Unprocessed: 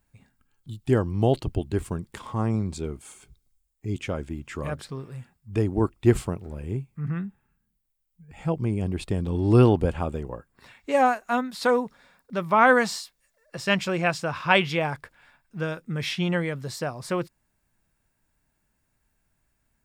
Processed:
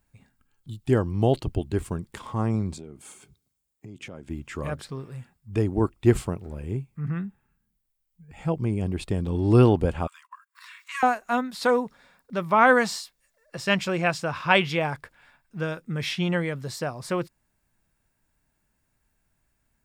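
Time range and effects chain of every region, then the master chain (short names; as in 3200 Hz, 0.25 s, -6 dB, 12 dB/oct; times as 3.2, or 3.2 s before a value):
2.74–4.29 low shelf 320 Hz +7.5 dB + compressor 16:1, threshold -34 dBFS + HPF 150 Hz
10.07–11.03 upward compressor, threshold -36 dBFS + brick-wall FIR high-pass 950 Hz + gate -59 dBFS, range -19 dB
whole clip: dry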